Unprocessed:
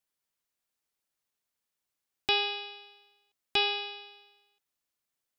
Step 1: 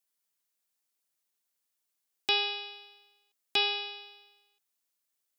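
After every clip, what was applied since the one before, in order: HPF 170 Hz; high shelf 4500 Hz +8 dB; gain -2.5 dB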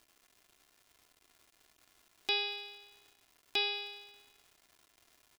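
crackle 430/s -46 dBFS; comb 2.9 ms, depth 38%; gain -5.5 dB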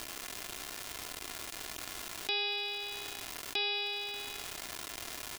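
fast leveller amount 70%; gain -2.5 dB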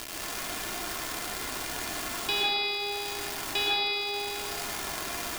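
plate-style reverb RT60 1.7 s, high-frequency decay 0.35×, pre-delay 0.105 s, DRR -5 dB; gain +3.5 dB

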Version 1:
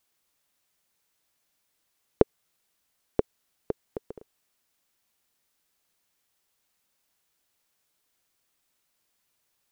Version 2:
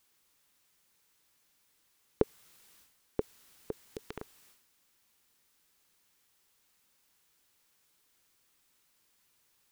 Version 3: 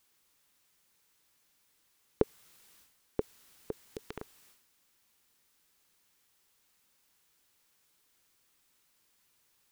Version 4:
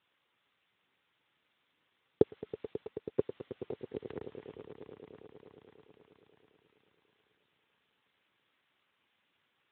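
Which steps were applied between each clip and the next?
bell 660 Hz -7.5 dB 0.31 oct; transient shaper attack -11 dB, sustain +10 dB; gain +4 dB
nothing audible
swelling echo 0.108 s, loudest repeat 5, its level -14.5 dB; gain +2.5 dB; Speex 11 kbps 8000 Hz

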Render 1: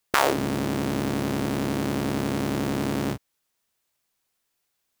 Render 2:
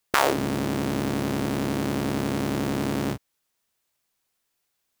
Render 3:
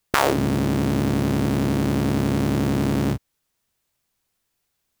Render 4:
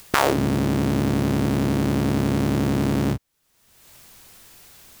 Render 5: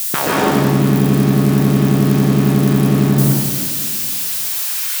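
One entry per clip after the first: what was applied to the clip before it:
nothing audible
low shelf 200 Hz +10 dB; gain +1 dB
upward compressor, threshold -26 dBFS
switching spikes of -15 dBFS; high-pass sweep 150 Hz -> 2200 Hz, 3.64–5; reverb RT60 2.0 s, pre-delay 0.117 s, DRR -6 dB; gain -2.5 dB

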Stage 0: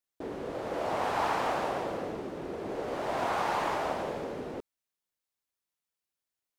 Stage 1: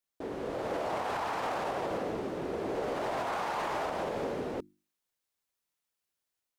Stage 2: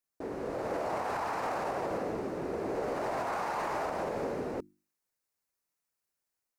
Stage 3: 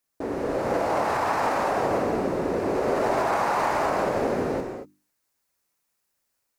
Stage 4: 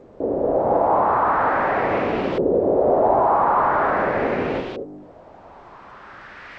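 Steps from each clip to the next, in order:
notches 50/100/150/200/250/300/350 Hz; limiter -28 dBFS, peak gain reduction 10.5 dB; AGC gain up to 3 dB
bell 3300 Hz -9 dB 0.51 oct
non-linear reverb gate 0.26 s flat, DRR 3.5 dB; gain +8 dB
delta modulation 32 kbps, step -36 dBFS; LFO low-pass saw up 0.42 Hz 450–3200 Hz; gain +2.5 dB; G.722 64 kbps 16000 Hz

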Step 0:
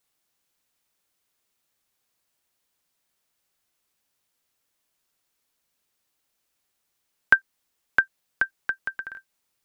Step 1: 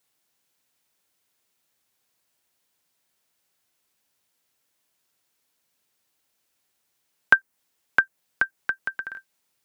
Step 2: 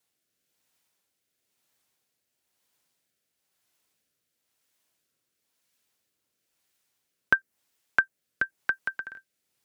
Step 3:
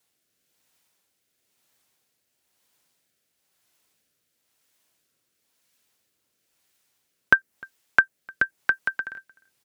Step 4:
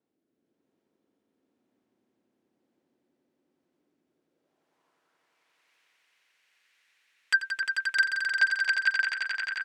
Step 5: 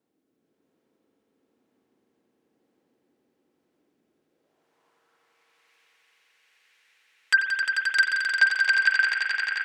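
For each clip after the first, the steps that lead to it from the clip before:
dynamic EQ 3800 Hz, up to -7 dB, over -39 dBFS, Q 0.84; HPF 75 Hz; notch 1200 Hz, Q 21; gain +2.5 dB
rotary speaker horn 1 Hz
outdoor echo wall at 52 m, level -25 dB; gain +5 dB
sine folder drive 15 dB, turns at -1 dBFS; band-pass sweep 290 Hz -> 2100 Hz, 4.04–5.37; swelling echo 88 ms, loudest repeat 5, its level -7 dB; gain -9 dB
spring tank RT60 1.2 s, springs 45 ms, chirp 70 ms, DRR 5 dB; gain +4 dB

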